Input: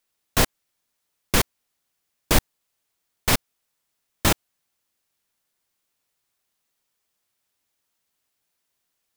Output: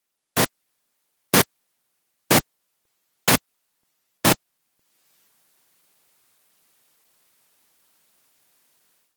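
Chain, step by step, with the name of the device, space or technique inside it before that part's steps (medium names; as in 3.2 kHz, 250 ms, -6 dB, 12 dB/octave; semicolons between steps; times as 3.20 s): video call (high-pass 120 Hz 24 dB/octave; level rider gain up to 16 dB; trim -1 dB; Opus 20 kbps 48 kHz)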